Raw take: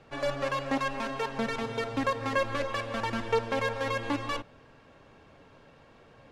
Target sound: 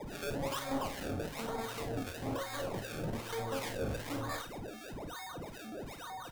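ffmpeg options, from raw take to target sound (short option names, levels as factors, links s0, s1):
-filter_complex "[0:a]asettb=1/sr,asplit=3[s0][s1][s2];[s0]atrim=end=1.114[s3];[s1]atrim=start=1.11:end=3.39,asetpts=PTS-STARTPTS,afade=t=in:d=0.004:c=qsin,afade=t=out:st=2.276:d=0.004:c=qsin,acompressor=threshold=0.0316:ratio=6[s4];[s2]atrim=start=3.386[s5];[s3][s4]acrossfade=d=0.004:c1=hsin:c2=qsin[s6];[s6][s5]acrossfade=d=0.004:c1=qsin:c2=hsin,aeval=exprs='val(0)+0.0112*sin(2*PI*3700*n/s)':c=same,acrusher=samples=30:mix=1:aa=0.000001:lfo=1:lforange=30:lforate=1.1,asoftclip=type=tanh:threshold=0.0335,acrossover=split=1100[s7][s8];[s7]aeval=exprs='val(0)*(1-0.7/2+0.7/2*cos(2*PI*2.6*n/s))':c=same[s9];[s8]aeval=exprs='val(0)*(1-0.7/2-0.7/2*cos(2*PI*2.6*n/s))':c=same[s10];[s9][s10]amix=inputs=2:normalize=0,aecho=1:1:33|53:0.299|0.335"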